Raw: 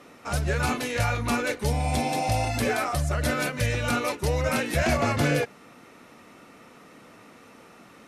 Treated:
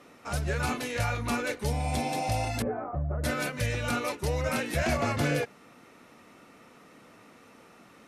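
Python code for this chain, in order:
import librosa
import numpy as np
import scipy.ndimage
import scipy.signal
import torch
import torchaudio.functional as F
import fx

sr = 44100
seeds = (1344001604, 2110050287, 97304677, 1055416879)

y = fx.bessel_lowpass(x, sr, hz=790.0, order=4, at=(2.62, 3.24))
y = y * librosa.db_to_amplitude(-4.0)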